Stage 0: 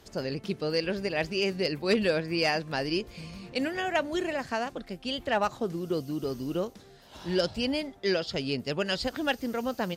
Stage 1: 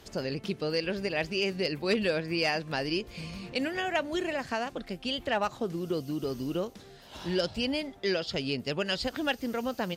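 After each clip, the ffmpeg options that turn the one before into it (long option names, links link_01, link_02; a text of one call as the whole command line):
ffmpeg -i in.wav -filter_complex "[0:a]equalizer=frequency=2800:width=1.5:gain=2.5,asplit=2[link_01][link_02];[link_02]acompressor=threshold=-34dB:ratio=6,volume=2dB[link_03];[link_01][link_03]amix=inputs=2:normalize=0,volume=-5dB" out.wav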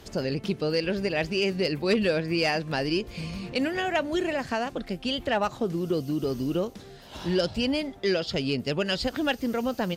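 ffmpeg -i in.wav -filter_complex "[0:a]lowshelf=frequency=490:gain=3.5,asplit=2[link_01][link_02];[link_02]asoftclip=type=tanh:threshold=-24.5dB,volume=-8dB[link_03];[link_01][link_03]amix=inputs=2:normalize=0" out.wav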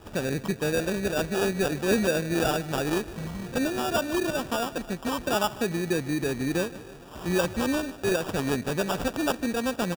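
ffmpeg -i in.wav -af "acrusher=samples=21:mix=1:aa=0.000001,aecho=1:1:150|300|450|600|750:0.119|0.0701|0.0414|0.0244|0.0144" out.wav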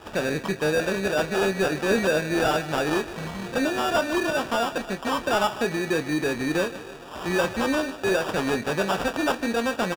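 ffmpeg -i in.wav -filter_complex "[0:a]asplit=2[link_01][link_02];[link_02]highpass=frequency=720:poles=1,volume=12dB,asoftclip=type=tanh:threshold=-14.5dB[link_03];[link_01][link_03]amix=inputs=2:normalize=0,lowpass=frequency=3800:poles=1,volume=-6dB,asplit=2[link_04][link_05];[link_05]adelay=26,volume=-11dB[link_06];[link_04][link_06]amix=inputs=2:normalize=0,volume=1.5dB" out.wav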